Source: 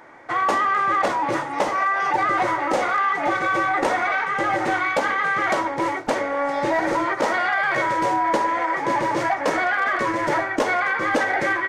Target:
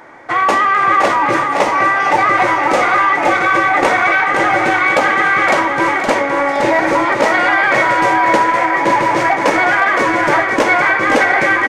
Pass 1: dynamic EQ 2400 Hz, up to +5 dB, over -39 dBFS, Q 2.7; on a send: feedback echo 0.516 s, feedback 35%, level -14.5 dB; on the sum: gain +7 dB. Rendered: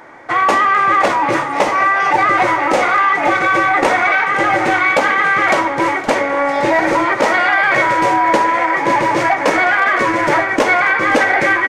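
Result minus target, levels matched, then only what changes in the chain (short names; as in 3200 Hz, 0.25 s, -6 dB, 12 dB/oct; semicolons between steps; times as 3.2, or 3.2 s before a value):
echo-to-direct -8.5 dB
change: feedback echo 0.516 s, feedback 35%, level -6 dB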